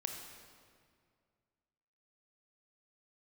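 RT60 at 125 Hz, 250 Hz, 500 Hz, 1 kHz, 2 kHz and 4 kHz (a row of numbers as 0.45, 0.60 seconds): 2.6, 2.3, 2.2, 2.0, 1.8, 1.5 seconds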